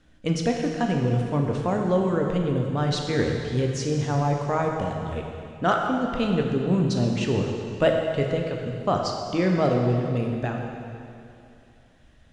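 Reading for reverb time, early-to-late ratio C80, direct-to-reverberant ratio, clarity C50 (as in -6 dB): 2.6 s, 3.5 dB, 1.0 dB, 2.5 dB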